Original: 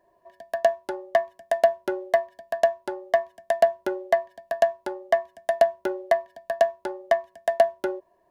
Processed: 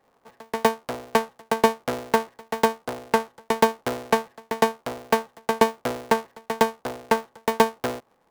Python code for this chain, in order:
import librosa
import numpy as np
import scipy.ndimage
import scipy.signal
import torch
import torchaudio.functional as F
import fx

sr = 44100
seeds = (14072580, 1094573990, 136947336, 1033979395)

y = fx.cycle_switch(x, sr, every=3, mode='inverted')